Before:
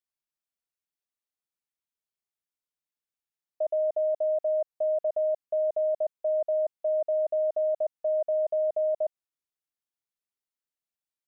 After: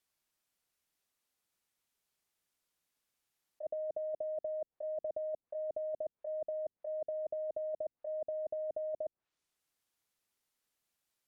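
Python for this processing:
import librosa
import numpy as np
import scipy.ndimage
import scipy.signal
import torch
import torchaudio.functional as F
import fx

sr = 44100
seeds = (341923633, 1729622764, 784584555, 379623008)

y = fx.env_lowpass_down(x, sr, base_hz=360.0, full_db=-27.0)
y = fx.over_compress(y, sr, threshold_db=-41.0, ratio=-1.0)
y = F.gain(torch.from_numpy(y), 3.5).numpy()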